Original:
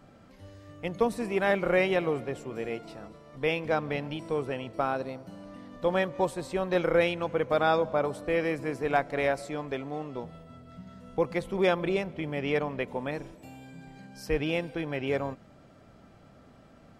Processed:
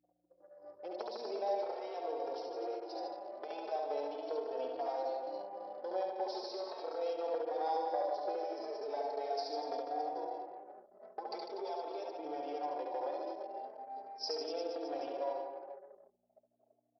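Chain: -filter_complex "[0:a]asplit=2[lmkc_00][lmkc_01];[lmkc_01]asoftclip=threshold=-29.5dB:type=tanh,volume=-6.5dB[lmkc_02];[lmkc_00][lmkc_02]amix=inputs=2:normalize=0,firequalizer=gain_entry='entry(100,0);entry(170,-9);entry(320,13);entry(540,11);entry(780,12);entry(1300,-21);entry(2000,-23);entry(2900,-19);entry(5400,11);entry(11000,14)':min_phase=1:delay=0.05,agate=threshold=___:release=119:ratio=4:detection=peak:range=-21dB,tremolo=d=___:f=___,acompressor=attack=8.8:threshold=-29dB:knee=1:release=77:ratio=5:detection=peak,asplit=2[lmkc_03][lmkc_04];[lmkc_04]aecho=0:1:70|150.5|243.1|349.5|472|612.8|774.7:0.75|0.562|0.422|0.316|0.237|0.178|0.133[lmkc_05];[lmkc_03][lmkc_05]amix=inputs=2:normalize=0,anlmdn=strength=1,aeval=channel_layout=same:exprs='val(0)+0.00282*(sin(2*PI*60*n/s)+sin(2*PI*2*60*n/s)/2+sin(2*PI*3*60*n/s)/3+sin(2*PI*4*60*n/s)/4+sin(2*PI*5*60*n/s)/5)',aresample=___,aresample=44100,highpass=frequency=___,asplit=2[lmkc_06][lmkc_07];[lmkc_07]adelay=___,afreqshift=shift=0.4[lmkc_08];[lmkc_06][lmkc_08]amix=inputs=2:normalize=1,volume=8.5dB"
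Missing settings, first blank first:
-41dB, 0.67, 3, 11025, 1.3k, 3.8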